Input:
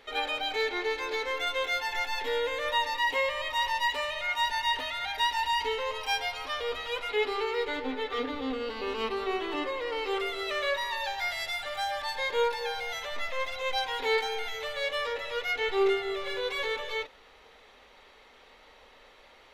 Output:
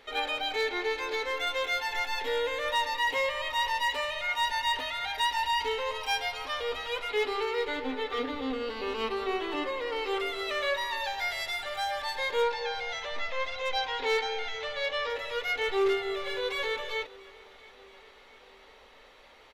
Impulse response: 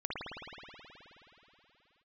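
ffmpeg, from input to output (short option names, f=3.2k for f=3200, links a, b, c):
-filter_complex "[0:a]asettb=1/sr,asplit=3[a][b][c];[a]atrim=end=12.424[d];[b]atrim=start=12.42:end=15.1,asetpts=PTS-STARTPTS,afade=t=in:d=0.004:c=qsin,afade=t=out:st=2.676:d=0.004:c=qsin,lowpass=f=6.3k:w=0.5412,lowpass=f=6.3k:w=1.3066[e];[c]atrim=start=15.096[f];[d][e]acrossfade=d=0.004:c1=hsin:c2=qsin[g];[g][f]acrossfade=d=0.004:c1=qsin:c2=hsin,volume=21.5dB,asoftclip=hard,volume=-21.5dB,aecho=1:1:676|1352|2028|2704:0.0708|0.0404|0.023|0.0131"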